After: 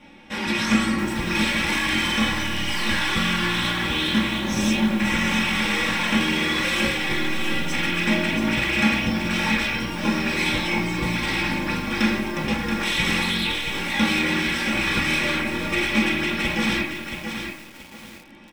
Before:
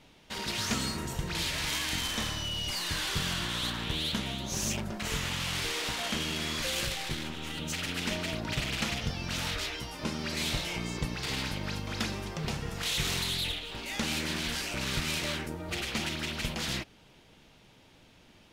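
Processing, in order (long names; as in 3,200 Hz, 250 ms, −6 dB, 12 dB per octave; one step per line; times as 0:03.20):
high-shelf EQ 7,500 Hz −8 dB
comb filter 3.6 ms, depth 69%
convolution reverb RT60 0.50 s, pre-delay 3 ms, DRR −2.5 dB
feedback echo at a low word length 677 ms, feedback 35%, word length 7 bits, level −6.5 dB
level +2.5 dB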